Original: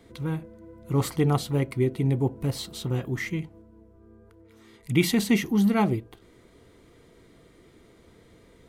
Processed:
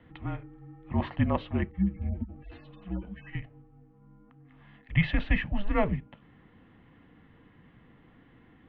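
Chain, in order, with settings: 1.68–3.35 s: harmonic-percussive separation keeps harmonic; mistuned SSB -190 Hz 230–3100 Hz

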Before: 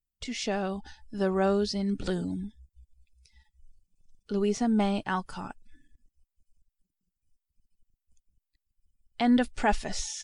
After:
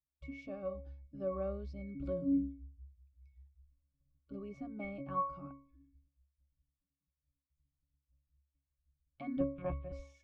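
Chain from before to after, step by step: 9.40–9.92 s: monotone LPC vocoder at 8 kHz 180 Hz; pitch-class resonator C#, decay 0.43 s; trim +9 dB

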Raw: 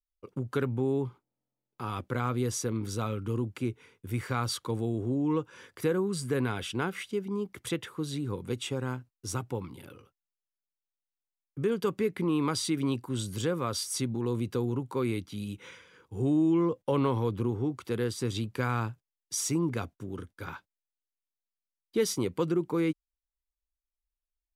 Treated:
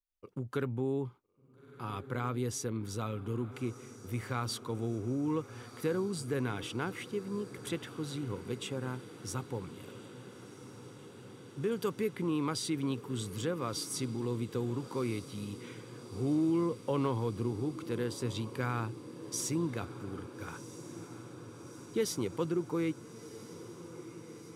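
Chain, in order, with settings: 11.71–12.11 s: treble shelf 5.4 kHz +7 dB; echo that smears into a reverb 1364 ms, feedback 76%, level -15 dB; trim -4.5 dB

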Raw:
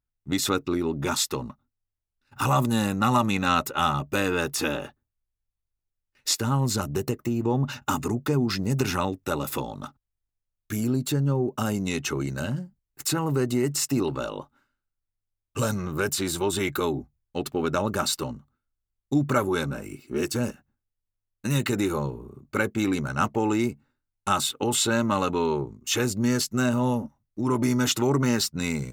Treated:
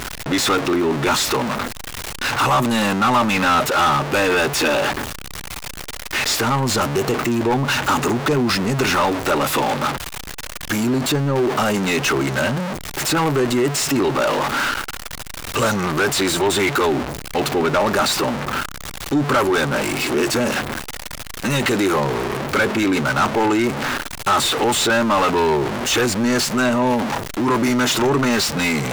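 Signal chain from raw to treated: jump at every zero crossing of -24 dBFS; overdrive pedal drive 21 dB, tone 3.4 kHz, clips at -9 dBFS

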